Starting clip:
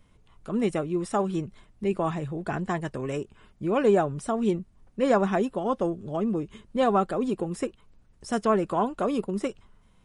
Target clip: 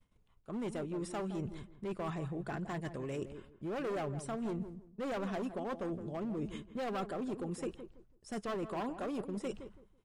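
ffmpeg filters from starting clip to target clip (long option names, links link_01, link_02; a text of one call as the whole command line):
ffmpeg -i in.wav -filter_complex "[0:a]volume=24dB,asoftclip=hard,volume=-24dB,areverse,acompressor=threshold=-40dB:ratio=6,areverse,agate=range=-33dB:threshold=-47dB:ratio=3:detection=peak,asplit=2[link_01][link_02];[link_02]adelay=165,lowpass=frequency=920:poles=1,volume=-9.5dB,asplit=2[link_03][link_04];[link_04]adelay=165,lowpass=frequency=920:poles=1,volume=0.25,asplit=2[link_05][link_06];[link_06]adelay=165,lowpass=frequency=920:poles=1,volume=0.25[link_07];[link_01][link_03][link_05][link_07]amix=inputs=4:normalize=0,volume=2.5dB" out.wav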